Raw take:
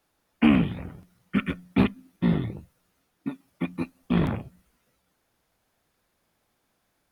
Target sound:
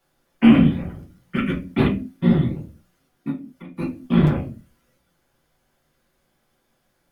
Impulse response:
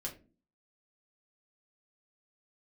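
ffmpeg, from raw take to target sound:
-filter_complex "[0:a]asettb=1/sr,asplit=3[s0][s1][s2];[s0]atrim=end=3.304[s3];[s1]atrim=start=3.3:end=3.77,asetpts=PTS-STARTPTS,afade=t=in:d=0.004:c=qsin,afade=t=out:st=0.466:d=0.004:c=qsin,acompressor=threshold=0.00251:ratio=2[s4];[s2]atrim=start=3.766[s5];[s3][s4]acrossfade=d=0.004:c1=hsin:c2=qsin[s6];[s6][s5]acrossfade=d=0.004:c1=qsin:c2=hsin[s7];[1:a]atrim=start_sample=2205,afade=t=out:st=0.29:d=0.01,atrim=end_sample=13230[s8];[s7][s8]afir=irnorm=-1:irlink=0,volume=1.68"

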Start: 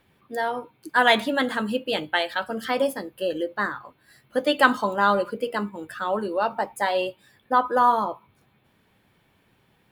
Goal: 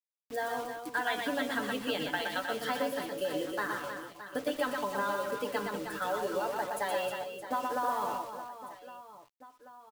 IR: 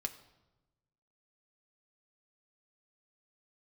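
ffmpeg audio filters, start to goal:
-filter_complex "[0:a]aecho=1:1:6.9:0.61,acompressor=threshold=0.0631:ratio=8,acrusher=bits=6:mix=0:aa=0.000001,asplit=2[s0][s1];[s1]aecho=0:1:120|312|619.2|1111|1897:0.631|0.398|0.251|0.158|0.1[s2];[s0][s2]amix=inputs=2:normalize=0,volume=0.501"

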